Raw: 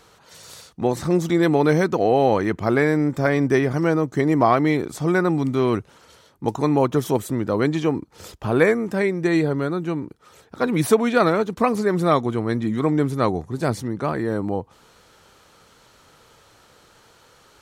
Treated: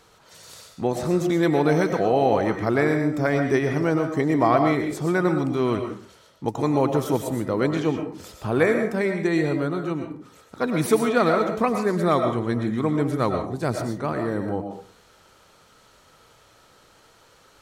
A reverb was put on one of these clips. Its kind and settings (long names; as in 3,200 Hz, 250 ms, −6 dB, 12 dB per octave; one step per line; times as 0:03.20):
comb and all-pass reverb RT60 0.43 s, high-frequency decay 0.6×, pre-delay 75 ms, DRR 4.5 dB
level −3 dB